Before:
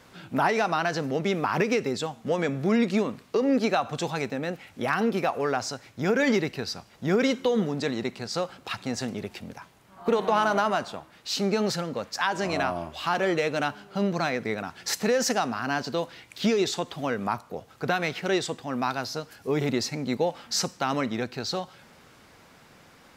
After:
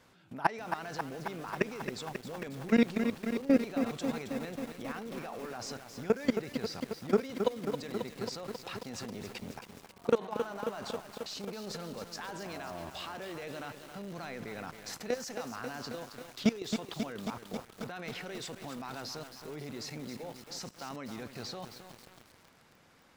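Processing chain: level quantiser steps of 21 dB; lo-fi delay 0.27 s, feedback 80%, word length 8-bit, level -7 dB

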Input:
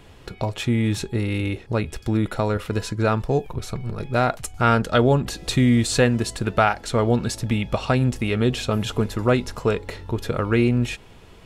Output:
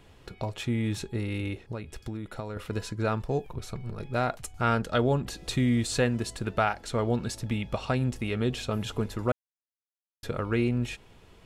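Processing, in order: 1.53–2.57 compressor 6:1, threshold -25 dBFS, peak gain reduction 9 dB; 9.32–10.23 mute; gain -7.5 dB

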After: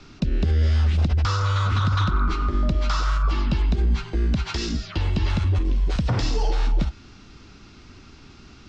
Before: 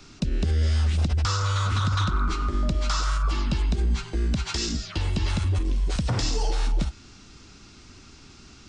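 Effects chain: air absorption 130 m; gain +3 dB

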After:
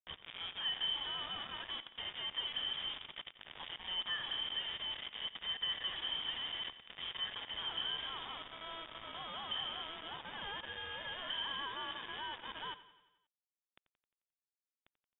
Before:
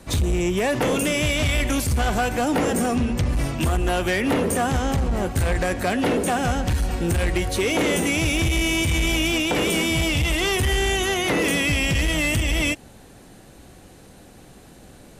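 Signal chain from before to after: compressor 12:1, threshold -33 dBFS, peak gain reduction 15 dB; vowel filter e; requantised 8-bit, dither none; feedback echo 88 ms, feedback 58%, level -15.5 dB; inverted band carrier 3600 Hz; gain +4.5 dB

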